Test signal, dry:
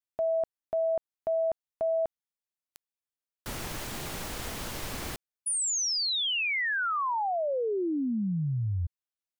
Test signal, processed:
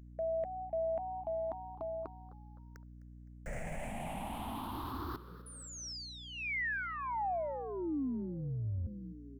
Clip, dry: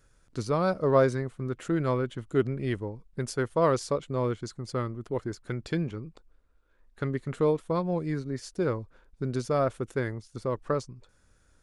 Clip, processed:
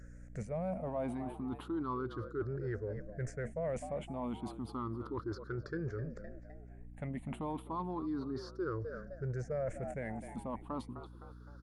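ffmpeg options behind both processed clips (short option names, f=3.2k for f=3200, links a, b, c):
-filter_complex "[0:a]afftfilt=real='re*pow(10,21/40*sin(2*PI*(0.54*log(max(b,1)*sr/1024/100)/log(2)-(0.32)*(pts-256)/sr)))':imag='im*pow(10,21/40*sin(2*PI*(0.54*log(max(b,1)*sr/1024/100)/log(2)-(0.32)*(pts-256)/sr)))':win_size=1024:overlap=0.75,acrossover=split=2800[a][b];[b]acompressor=threshold=-42dB:ratio=4:attack=1:release=60[c];[a][c]amix=inputs=2:normalize=0,highshelf=f=2.1k:t=q:w=1.5:g=-6.5,asplit=4[d][e][f][g];[e]adelay=257,afreqshift=94,volume=-20.5dB[h];[f]adelay=514,afreqshift=188,volume=-27.2dB[i];[g]adelay=771,afreqshift=282,volume=-34dB[j];[d][h][i][j]amix=inputs=4:normalize=0,areverse,acompressor=threshold=-34dB:ratio=4:attack=1.4:release=131:knee=6:detection=peak,areverse,aeval=exprs='val(0)+0.00355*(sin(2*PI*60*n/s)+sin(2*PI*2*60*n/s)/2+sin(2*PI*3*60*n/s)/3+sin(2*PI*4*60*n/s)/4+sin(2*PI*5*60*n/s)/5)':c=same,volume=-2dB"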